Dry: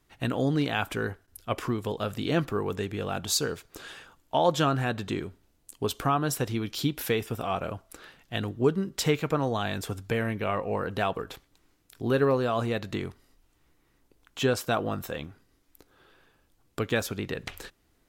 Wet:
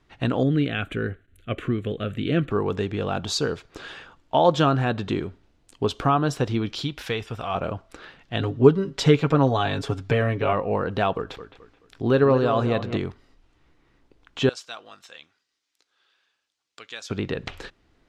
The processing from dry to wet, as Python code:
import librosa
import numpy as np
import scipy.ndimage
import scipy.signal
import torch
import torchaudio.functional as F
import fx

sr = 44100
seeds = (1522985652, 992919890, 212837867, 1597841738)

y = fx.fixed_phaser(x, sr, hz=2200.0, stages=4, at=(0.43, 2.51))
y = fx.peak_eq(y, sr, hz=290.0, db=-9.0, octaves=2.5, at=(6.81, 7.55))
y = fx.comb(y, sr, ms=7.2, depth=0.72, at=(8.39, 10.53))
y = fx.echo_bbd(y, sr, ms=215, stages=4096, feedback_pct=32, wet_db=-11.0, at=(11.17, 12.97))
y = fx.bandpass_q(y, sr, hz=6600.0, q=1.0, at=(14.49, 17.1))
y = fx.dynamic_eq(y, sr, hz=2000.0, q=1.5, threshold_db=-44.0, ratio=4.0, max_db=-4)
y = scipy.signal.sosfilt(scipy.signal.butter(2, 4300.0, 'lowpass', fs=sr, output='sos'), y)
y = y * 10.0 ** (5.5 / 20.0)